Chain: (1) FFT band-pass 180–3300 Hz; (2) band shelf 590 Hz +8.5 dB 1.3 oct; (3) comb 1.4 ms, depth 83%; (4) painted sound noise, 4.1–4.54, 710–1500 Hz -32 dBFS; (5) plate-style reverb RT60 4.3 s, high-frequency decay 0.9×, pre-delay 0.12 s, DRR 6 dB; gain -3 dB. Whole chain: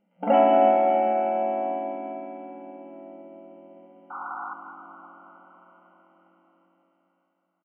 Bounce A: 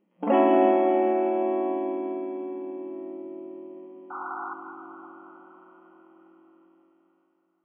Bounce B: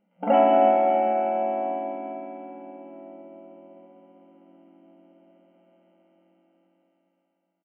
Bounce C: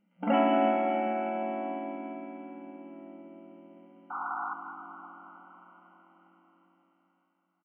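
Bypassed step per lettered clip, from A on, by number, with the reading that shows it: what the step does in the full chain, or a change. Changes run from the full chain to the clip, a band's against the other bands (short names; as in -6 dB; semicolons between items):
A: 3, 250 Hz band +6.0 dB; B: 4, momentary loudness spread change -1 LU; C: 2, loudness change -7.5 LU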